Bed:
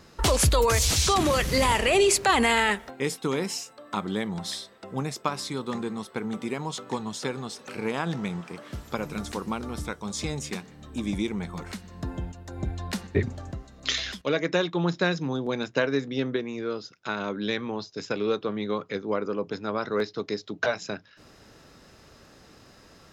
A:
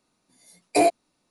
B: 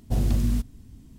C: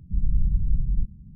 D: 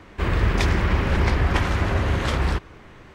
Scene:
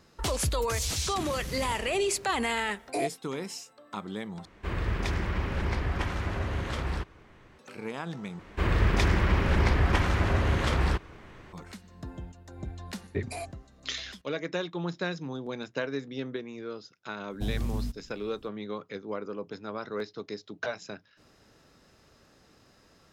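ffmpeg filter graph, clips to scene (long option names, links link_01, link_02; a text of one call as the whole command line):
ffmpeg -i bed.wav -i cue0.wav -i cue1.wav -i cue2.wav -i cue3.wav -filter_complex "[1:a]asplit=2[link_01][link_02];[4:a]asplit=2[link_03][link_04];[0:a]volume=-7.5dB[link_05];[link_02]highpass=930[link_06];[link_05]asplit=3[link_07][link_08][link_09];[link_07]atrim=end=4.454[link_10];[link_03]atrim=end=3.14,asetpts=PTS-STARTPTS,volume=-9.5dB[link_11];[link_08]atrim=start=7.586:end=8.394[link_12];[link_04]atrim=end=3.14,asetpts=PTS-STARTPTS,volume=-3.5dB[link_13];[link_09]atrim=start=11.526[link_14];[link_01]atrim=end=1.3,asetpts=PTS-STARTPTS,volume=-12dB,afade=type=in:duration=0.004:curve=hsin,afade=type=out:start_time=1.296:duration=0.004:curve=hsin,adelay=2180[link_15];[link_06]atrim=end=1.3,asetpts=PTS-STARTPTS,volume=-13.5dB,afade=type=in:duration=0.004:curve=hsin,afade=type=out:start_time=1.296:duration=0.004:curve=hsin,adelay=12560[link_16];[2:a]atrim=end=1.18,asetpts=PTS-STARTPTS,volume=-8.5dB,afade=type=in:duration=0.004:curve=hsin,afade=type=out:start_time=1.176:duration=0.004:curve=hsin,adelay=17300[link_17];[link_10][link_11]acrossfade=duration=0.004:curve1=hsin:curve2=hsin[link_18];[link_18][link_12]acrossfade=duration=0.004:curve1=hsin:curve2=hsin[link_19];[link_19][link_13]acrossfade=duration=0.004:curve1=hsin:curve2=hsin[link_20];[link_20][link_14]acrossfade=duration=0.004:curve1=hsin:curve2=hsin[link_21];[link_21][link_15][link_16][link_17]amix=inputs=4:normalize=0" out.wav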